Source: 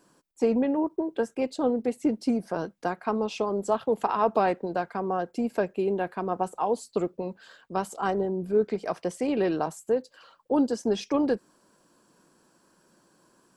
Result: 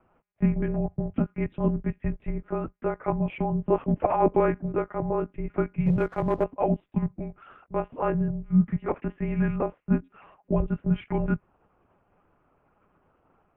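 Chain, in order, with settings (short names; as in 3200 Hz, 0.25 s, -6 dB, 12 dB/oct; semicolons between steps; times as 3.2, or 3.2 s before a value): monotone LPC vocoder at 8 kHz 210 Hz; mistuned SSB -240 Hz 250–2700 Hz; 5.86–6.44 sample leveller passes 1; gain +3 dB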